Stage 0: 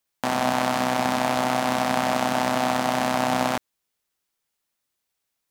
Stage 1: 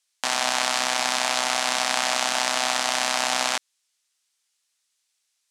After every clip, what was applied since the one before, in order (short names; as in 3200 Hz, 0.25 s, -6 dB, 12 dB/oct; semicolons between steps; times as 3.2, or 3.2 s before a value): weighting filter ITU-R 468; gain -2 dB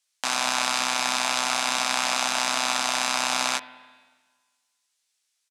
doubler 15 ms -6 dB; spring tank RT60 1.5 s, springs 44/51/55 ms, chirp 55 ms, DRR 15.5 dB; gain -2 dB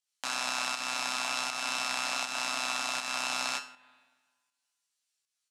resonator 140 Hz, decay 0.42 s, harmonics all, mix 80%; pump 80 bpm, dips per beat 1, -7 dB, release 0.239 s; gain +2 dB